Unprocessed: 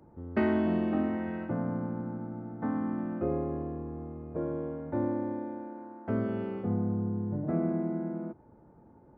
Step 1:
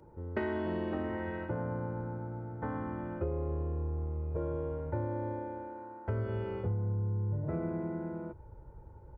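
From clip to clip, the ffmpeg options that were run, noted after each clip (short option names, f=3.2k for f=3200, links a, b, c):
-af "aecho=1:1:2.1:0.54,asubboost=boost=8:cutoff=79,acompressor=threshold=-30dB:ratio=6"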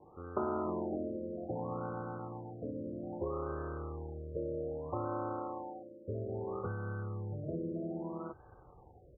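-af "acrusher=samples=27:mix=1:aa=0.000001,aemphasis=mode=production:type=bsi,afftfilt=real='re*lt(b*sr/1024,620*pow(1700/620,0.5+0.5*sin(2*PI*0.62*pts/sr)))':imag='im*lt(b*sr/1024,620*pow(1700/620,0.5+0.5*sin(2*PI*0.62*pts/sr)))':win_size=1024:overlap=0.75,volume=2dB"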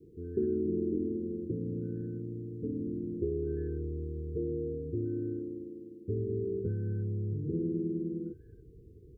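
-af "asuperstop=centerf=890:order=20:qfactor=0.7,volume=6.5dB"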